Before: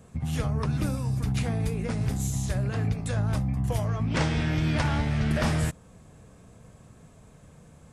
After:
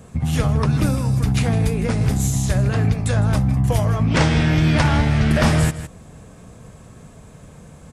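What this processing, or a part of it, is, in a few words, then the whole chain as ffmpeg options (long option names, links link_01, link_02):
ducked delay: -filter_complex "[0:a]asplit=3[link_01][link_02][link_03];[link_02]adelay=159,volume=-9dB[link_04];[link_03]apad=whole_len=356558[link_05];[link_04][link_05]sidechaincompress=threshold=-29dB:ratio=8:attack=16:release=492[link_06];[link_01][link_06]amix=inputs=2:normalize=0,volume=9dB"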